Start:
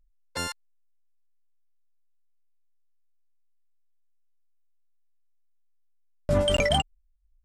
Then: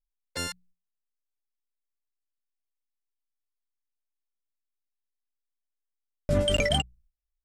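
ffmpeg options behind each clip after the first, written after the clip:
-af "agate=range=-20dB:threshold=-57dB:ratio=16:detection=peak,equalizer=f=950:t=o:w=0.87:g=-8.5,bandreject=f=60:t=h:w=6,bandreject=f=120:t=h:w=6,bandreject=f=180:t=h:w=6"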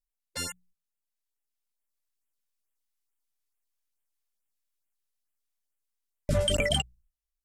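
-af "equalizer=f=12k:t=o:w=2.1:g=5.5,dynaudnorm=f=360:g=9:m=6.5dB,afftfilt=real='re*(1-between(b*sr/1024,230*pow(5100/230,0.5+0.5*sin(2*PI*2.3*pts/sr))/1.41,230*pow(5100/230,0.5+0.5*sin(2*PI*2.3*pts/sr))*1.41))':imag='im*(1-between(b*sr/1024,230*pow(5100/230,0.5+0.5*sin(2*PI*2.3*pts/sr))/1.41,230*pow(5100/230,0.5+0.5*sin(2*PI*2.3*pts/sr))*1.41))':win_size=1024:overlap=0.75,volume=-3.5dB"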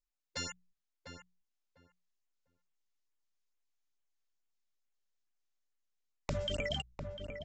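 -filter_complex "[0:a]acompressor=threshold=-30dB:ratio=6,aresample=16000,aeval=exprs='(mod(11.2*val(0)+1,2)-1)/11.2':c=same,aresample=44100,asplit=2[a][b];[b]adelay=700,lowpass=f=1.6k:p=1,volume=-6.5dB,asplit=2[c][d];[d]adelay=700,lowpass=f=1.6k:p=1,volume=0.19,asplit=2[e][f];[f]adelay=700,lowpass=f=1.6k:p=1,volume=0.19[g];[a][c][e][g]amix=inputs=4:normalize=0,volume=-2.5dB"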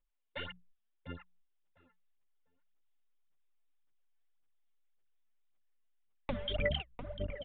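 -af "aphaser=in_gain=1:out_gain=1:delay=4.6:decay=0.72:speed=1.8:type=sinusoidal,aresample=8000,aresample=44100,volume=-2.5dB"

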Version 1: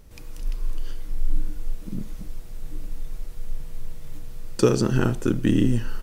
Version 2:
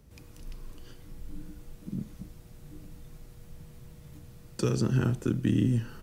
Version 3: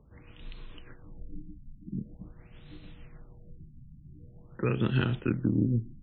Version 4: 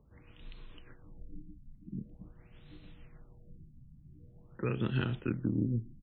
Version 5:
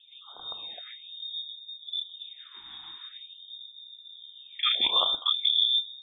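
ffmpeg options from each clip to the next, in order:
-filter_complex "[0:a]highpass=43,equalizer=f=140:w=0.54:g=6.5,acrossover=split=130|1300[a][b][c];[b]alimiter=limit=-10.5dB:level=0:latency=1:release=291[d];[a][d][c]amix=inputs=3:normalize=0,volume=-7.5dB"
-af "tremolo=f=6.6:d=0.34,equalizer=f=3.4k:w=0.61:g=12,afftfilt=real='re*lt(b*sr/1024,290*pow(4300/290,0.5+0.5*sin(2*PI*0.45*pts/sr)))':imag='im*lt(b*sr/1024,290*pow(4300/290,0.5+0.5*sin(2*PI*0.45*pts/sr)))':win_size=1024:overlap=0.75"
-filter_complex "[0:a]asplit=2[a][b];[b]adelay=1574,volume=-25dB,highshelf=f=4k:g=-35.4[c];[a][c]amix=inputs=2:normalize=0,volume=-5dB"
-af "crystalizer=i=6:c=0,lowpass=f=3.1k:t=q:w=0.5098,lowpass=f=3.1k:t=q:w=0.6013,lowpass=f=3.1k:t=q:w=0.9,lowpass=f=3.1k:t=q:w=2.563,afreqshift=-3700,afftfilt=real='re*(1-between(b*sr/1024,490*pow(2200/490,0.5+0.5*sin(2*PI*0.63*pts/sr))/1.41,490*pow(2200/490,0.5+0.5*sin(2*PI*0.63*pts/sr))*1.41))':imag='im*(1-between(b*sr/1024,490*pow(2200/490,0.5+0.5*sin(2*PI*0.63*pts/sr))/1.41,490*pow(2200/490,0.5+0.5*sin(2*PI*0.63*pts/sr))*1.41))':win_size=1024:overlap=0.75,volume=6.5dB"

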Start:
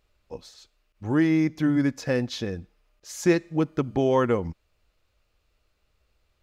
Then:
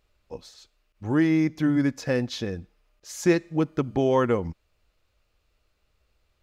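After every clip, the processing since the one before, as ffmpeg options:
-af anull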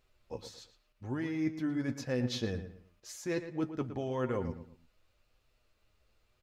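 -filter_complex "[0:a]areverse,acompressor=threshold=-29dB:ratio=6,areverse,flanger=delay=7.7:depth=2:regen=44:speed=0.92:shape=sinusoidal,asplit=2[a][b];[b]adelay=114,lowpass=f=3.1k:p=1,volume=-10.5dB,asplit=2[c][d];[d]adelay=114,lowpass=f=3.1k:p=1,volume=0.32,asplit=2[e][f];[f]adelay=114,lowpass=f=3.1k:p=1,volume=0.32[g];[a][c][e][g]amix=inputs=4:normalize=0,volume=2dB"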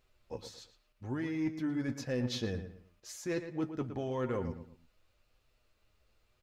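-af "asoftclip=type=tanh:threshold=-23.5dB"

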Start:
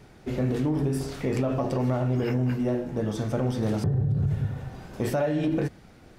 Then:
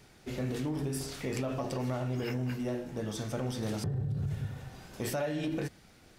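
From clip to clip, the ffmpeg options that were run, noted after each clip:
-af "highshelf=f=2k:g=11,volume=-8.5dB"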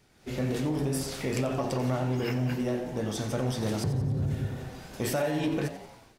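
-filter_complex "[0:a]dynaudnorm=f=100:g=5:m=10.5dB,flanger=delay=9.9:depth=8.3:regen=89:speed=1.9:shape=triangular,asplit=2[a][b];[b]asplit=5[c][d][e][f][g];[c]adelay=89,afreqshift=130,volume=-13.5dB[h];[d]adelay=178,afreqshift=260,volume=-19dB[i];[e]adelay=267,afreqshift=390,volume=-24.5dB[j];[f]adelay=356,afreqshift=520,volume=-30dB[k];[g]adelay=445,afreqshift=650,volume=-35.6dB[l];[h][i][j][k][l]amix=inputs=5:normalize=0[m];[a][m]amix=inputs=2:normalize=0,volume=-1.5dB"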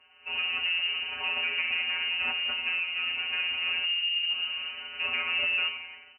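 -af "aresample=11025,asoftclip=type=tanh:threshold=-29dB,aresample=44100,afftfilt=real='hypot(re,im)*cos(PI*b)':imag='0':win_size=1024:overlap=0.75,lowpass=f=2.6k:t=q:w=0.5098,lowpass=f=2.6k:t=q:w=0.6013,lowpass=f=2.6k:t=q:w=0.9,lowpass=f=2.6k:t=q:w=2.563,afreqshift=-3000,volume=8dB"

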